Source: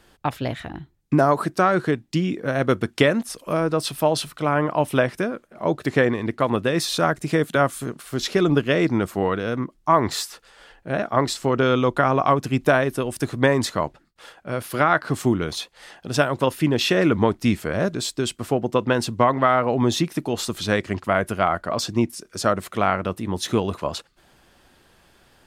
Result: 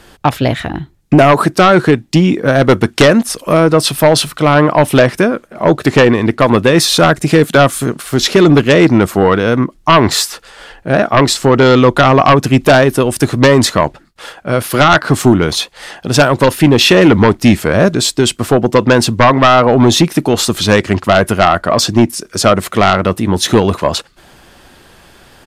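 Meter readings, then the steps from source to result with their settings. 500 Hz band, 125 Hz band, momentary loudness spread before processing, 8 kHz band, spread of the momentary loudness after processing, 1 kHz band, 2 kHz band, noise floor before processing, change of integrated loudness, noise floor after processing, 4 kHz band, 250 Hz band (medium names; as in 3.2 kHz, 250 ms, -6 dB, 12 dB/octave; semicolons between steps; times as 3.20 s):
+11.5 dB, +12.5 dB, 9 LU, +13.5 dB, 7 LU, +10.5 dB, +11.0 dB, -59 dBFS, +11.5 dB, -46 dBFS, +14.0 dB, +12.0 dB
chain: sine folder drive 8 dB, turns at -3.5 dBFS; resampled via 32 kHz; trim +2 dB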